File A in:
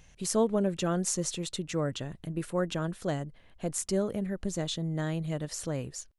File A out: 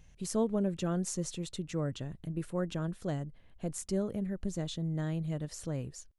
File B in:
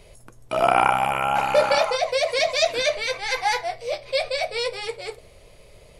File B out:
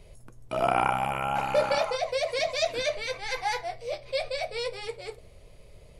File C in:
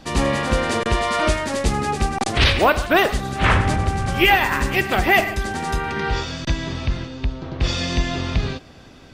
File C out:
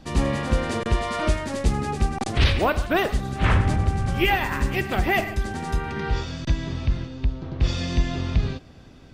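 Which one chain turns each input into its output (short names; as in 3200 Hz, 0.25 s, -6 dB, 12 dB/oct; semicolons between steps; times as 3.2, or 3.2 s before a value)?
low shelf 310 Hz +8 dB; gain -7.5 dB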